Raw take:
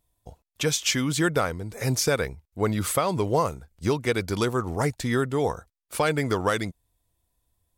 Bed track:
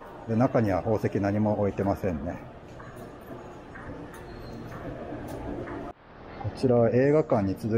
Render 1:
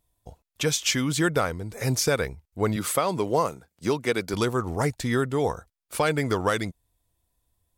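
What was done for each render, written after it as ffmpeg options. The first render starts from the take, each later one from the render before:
ffmpeg -i in.wav -filter_complex "[0:a]asettb=1/sr,asplit=3[link_01][link_02][link_03];[link_01]atrim=end=2.764[link_04];[link_02]atrim=start=2.76:end=4.34,asetpts=PTS-STARTPTS,afade=type=in:duration=0.004:curve=qsin,afade=type=out:start_time=1.576:duration=0.004:curve=qsin,highpass=160[link_05];[link_03]atrim=start=4.336[link_06];[link_04][link_05]acrossfade=duration=0.004:curve1=hsin:curve2=qsin[link_07];[link_07][link_06]acrossfade=duration=0.004:curve1=qsin:curve2=hsin" out.wav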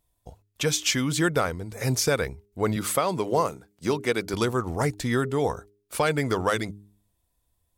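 ffmpeg -i in.wav -af "bandreject=frequency=102.1:width_type=h:width=4,bandreject=frequency=204.2:width_type=h:width=4,bandreject=frequency=306.3:width_type=h:width=4,bandreject=frequency=408.4:width_type=h:width=4" out.wav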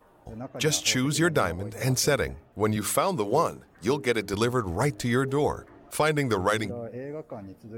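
ffmpeg -i in.wav -i bed.wav -filter_complex "[1:a]volume=-15dB[link_01];[0:a][link_01]amix=inputs=2:normalize=0" out.wav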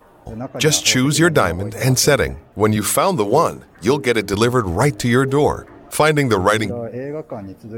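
ffmpeg -i in.wav -af "volume=9.5dB,alimiter=limit=-3dB:level=0:latency=1" out.wav

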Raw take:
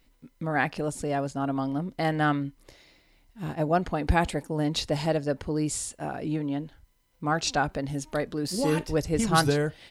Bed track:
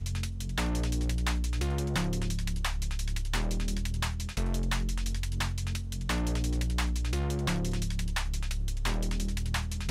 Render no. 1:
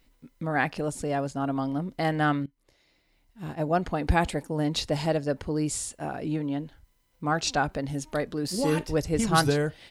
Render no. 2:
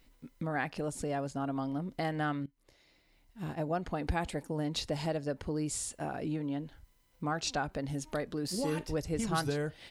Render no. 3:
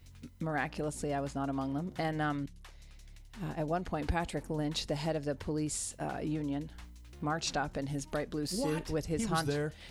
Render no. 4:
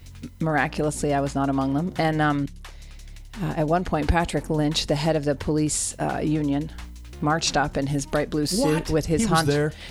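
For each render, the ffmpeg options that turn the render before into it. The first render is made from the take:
ffmpeg -i in.wav -filter_complex "[0:a]asplit=2[link_01][link_02];[link_01]atrim=end=2.46,asetpts=PTS-STARTPTS,afade=type=out:start_time=2.456:duration=0.004:curve=hsin:silence=0.0944061[link_03];[link_02]atrim=start=2.46,asetpts=PTS-STARTPTS,afade=type=in:duration=1.44:silence=0.0944061[link_04];[link_03][link_04]concat=n=2:v=0:a=1" out.wav
ffmpeg -i in.wav -af "acompressor=threshold=-36dB:ratio=2" out.wav
ffmpeg -i in.wav -i bed.wav -filter_complex "[1:a]volume=-22dB[link_01];[0:a][link_01]amix=inputs=2:normalize=0" out.wav
ffmpeg -i in.wav -af "volume=11.5dB" out.wav

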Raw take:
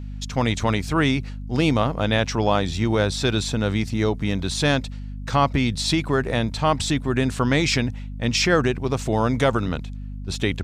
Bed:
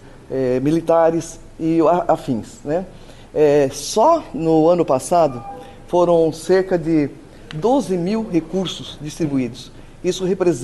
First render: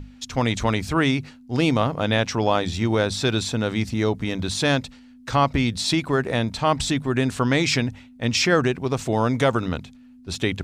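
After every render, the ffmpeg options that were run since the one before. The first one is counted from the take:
ffmpeg -i in.wav -af "bandreject=frequency=50:width_type=h:width=6,bandreject=frequency=100:width_type=h:width=6,bandreject=frequency=150:width_type=h:width=6,bandreject=frequency=200:width_type=h:width=6" out.wav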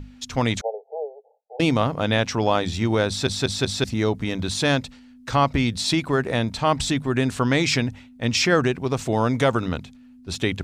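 ffmpeg -i in.wav -filter_complex "[0:a]asettb=1/sr,asplit=3[link_01][link_02][link_03];[link_01]atrim=end=0.614[link_04];[link_02]atrim=start=0.61:end=1.6,asetpts=PTS-STARTPTS,afade=type=in:duration=0.004:curve=qsin,afade=type=out:start_time=0.986:duration=0.004:curve=qsin,asuperpass=centerf=600:order=20:qfactor=1.4[link_05];[link_03]atrim=start=1.596[link_06];[link_04][link_05]acrossfade=duration=0.004:curve1=hsin:curve2=qsin[link_07];[link_07][link_06]acrossfade=duration=0.004:curve1=qsin:curve2=hsin,asplit=5[link_08][link_09][link_10][link_11][link_12];[link_08]atrim=end=3.272[link_13];[link_09]atrim=start=3.078:end=3.272[link_14];[link_10]atrim=start=3.078:end=3.272[link_15];[link_11]atrim=start=3.078:end=3.272[link_16];[link_12]atrim=start=3.838[link_17];[link_13][link_14]acrossfade=duration=0.004:curve1=hsin:curve2=hsin[link_18];[link_18][link_15]acrossfade=duration=0.004:curve1=hsin:curve2=hsin[link_19];[link_19][link_16]acrossfade=duration=0.004:curve1=hsin:curve2=hsin[link_20];[link_20][link_17]acrossfade=duration=0.004:curve1=hsin:curve2=hsin" out.wav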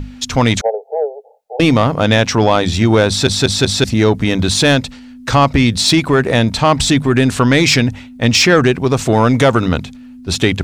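ffmpeg -i in.wav -filter_complex "[0:a]asplit=2[link_01][link_02];[link_02]alimiter=limit=-14dB:level=0:latency=1:release=383,volume=0dB[link_03];[link_01][link_03]amix=inputs=2:normalize=0,acontrast=64" out.wav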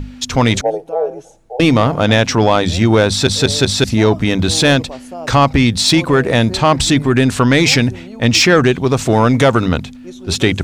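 ffmpeg -i in.wav -i bed.wav -filter_complex "[1:a]volume=-15dB[link_01];[0:a][link_01]amix=inputs=2:normalize=0" out.wav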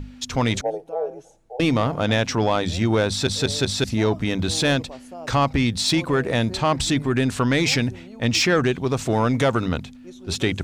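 ffmpeg -i in.wav -af "volume=-8.5dB" out.wav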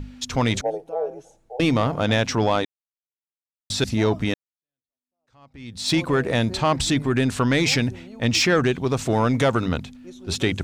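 ffmpeg -i in.wav -filter_complex "[0:a]asplit=4[link_01][link_02][link_03][link_04];[link_01]atrim=end=2.65,asetpts=PTS-STARTPTS,afade=type=out:start_time=2.646:duration=0.004:curve=hsin[link_05];[link_02]atrim=start=2.65:end=3.7,asetpts=PTS-STARTPTS,volume=0[link_06];[link_03]atrim=start=3.7:end=4.34,asetpts=PTS-STARTPTS,afade=type=in:duration=0.004:curve=hsin,afade=type=out:start_time=0.636:duration=0.004:curve=hsin[link_07];[link_04]atrim=start=4.34,asetpts=PTS-STARTPTS,afade=type=in:duration=1.59:curve=exp[link_08];[link_05][link_06][link_07][link_08]concat=n=4:v=0:a=1" out.wav

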